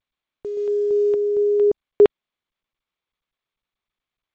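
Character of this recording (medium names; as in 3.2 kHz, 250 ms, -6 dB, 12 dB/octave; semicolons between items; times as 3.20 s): a quantiser's noise floor 10-bit, dither none; random-step tremolo, depth 100%; G.722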